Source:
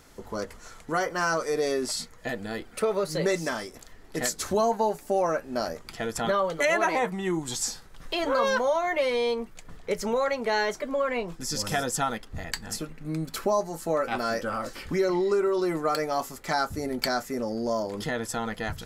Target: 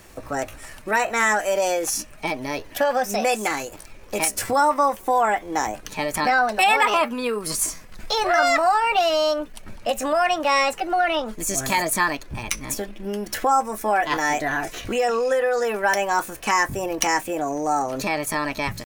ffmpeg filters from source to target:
-filter_complex "[0:a]acrossover=split=440[a][b];[a]acompressor=threshold=-33dB:ratio=6[c];[c][b]amix=inputs=2:normalize=0,asetrate=57191,aresample=44100,atempo=0.771105,volume=6.5dB"

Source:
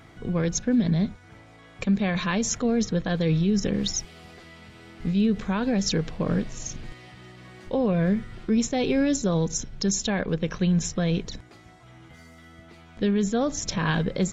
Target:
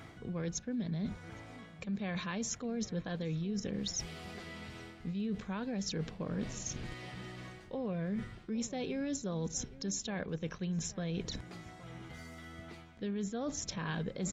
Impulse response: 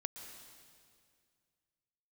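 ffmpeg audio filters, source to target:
-filter_complex "[0:a]highpass=41,areverse,acompressor=threshold=-37dB:ratio=4,areverse,asplit=2[a][b];[b]adelay=816.3,volume=-18dB,highshelf=f=4k:g=-18.4[c];[a][c]amix=inputs=2:normalize=0"

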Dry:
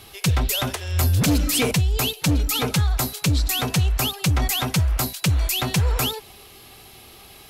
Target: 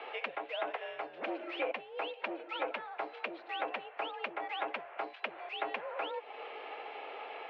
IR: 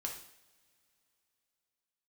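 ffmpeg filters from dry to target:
-af "equalizer=f=620:t=o:w=0.97:g=9,acompressor=threshold=-36dB:ratio=4,highpass=f=320:t=q:w=0.5412,highpass=f=320:t=q:w=1.307,lowpass=f=2.5k:t=q:w=0.5176,lowpass=f=2.5k:t=q:w=0.7071,lowpass=f=2.5k:t=q:w=1.932,afreqshift=51,aemphasis=mode=production:type=75kf,volume=1.5dB"

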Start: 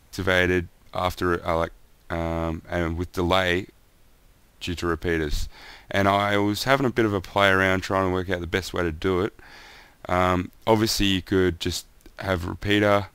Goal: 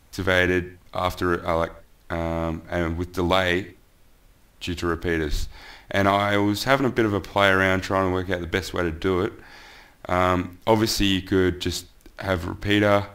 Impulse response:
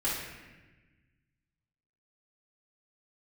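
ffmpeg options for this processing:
-filter_complex "[0:a]asplit=2[a][b];[1:a]atrim=start_sample=2205,afade=t=out:st=0.22:d=0.01,atrim=end_sample=10143,lowpass=3.9k[c];[b][c]afir=irnorm=-1:irlink=0,volume=-22dB[d];[a][d]amix=inputs=2:normalize=0"

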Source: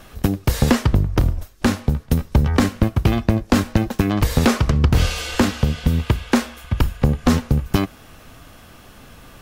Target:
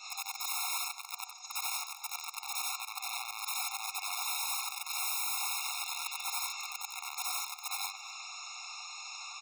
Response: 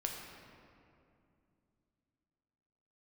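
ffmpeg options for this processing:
-filter_complex "[0:a]afftfilt=real='re':imag='-im':win_size=8192:overlap=0.75,adynamicequalizer=threshold=0.00891:dfrequency=210:dqfactor=5:tfrequency=210:tqfactor=5:attack=5:release=100:ratio=0.375:range=3.5:mode=boostabove:tftype=bell,acompressor=threshold=-30dB:ratio=4,aresample=16000,volume=27.5dB,asoftclip=hard,volume=-27.5dB,aresample=44100,crystalizer=i=10:c=0,aeval=exprs='(mod(20*val(0)+1,2)-1)/20':c=same,asplit=2[a][b];[b]adelay=244,lowpass=f=3k:p=1,volume=-17dB,asplit=2[c][d];[d]adelay=244,lowpass=f=3k:p=1,volume=0.23[e];[a][c][e]amix=inputs=3:normalize=0,afftfilt=real='re*eq(mod(floor(b*sr/1024/710),2),1)':imag='im*eq(mod(floor(b*sr/1024/710),2),1)':win_size=1024:overlap=0.75"

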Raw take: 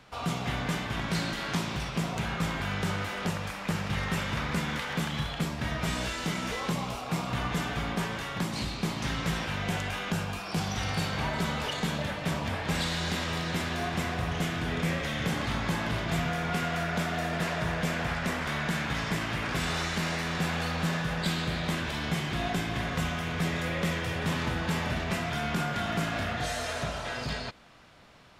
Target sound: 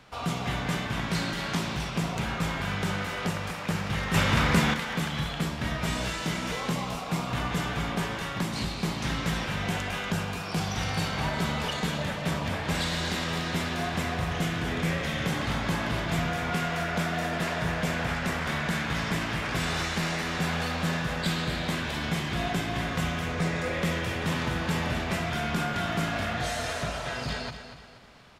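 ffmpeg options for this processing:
-filter_complex "[0:a]asettb=1/sr,asplit=3[a][b][c];[a]atrim=end=23.264[d];[b]atrim=start=23.26:end=23.74,asetpts=PTS-STARTPTS,afade=t=in:d=0.004:c=qsin,afade=t=out:st=0.476:d=0.004:c=qsin,equalizer=f=500:t=o:w=0.33:g=5,equalizer=f=3.15k:t=o:w=0.33:g=-6,equalizer=f=12.5k:t=o:w=0.33:g=-12[e];[c]atrim=start=23.736[f];[d][e]acrossfade=d=0.004:c1=hsin:c2=qsin[g];[g][f]acrossfade=d=0.004:c1=qsin:c2=hsin,aecho=1:1:239|478|717|956:0.299|0.119|0.0478|0.0191,asettb=1/sr,asplit=3[h][i][j];[h]atrim=end=4.144[k];[i]atrim=start=4.14:end=4.74,asetpts=PTS-STARTPTS,afade=t=in:d=0.004:c=qsin,afade=t=out:st=0.596:d=0.004:c=qsin,acontrast=72[l];[j]atrim=start=4.736[m];[k][l]acrossfade=d=0.004:c1=hsin:c2=qsin[n];[n][m]acrossfade=d=0.004:c1=qsin:c2=hsin,volume=1dB"

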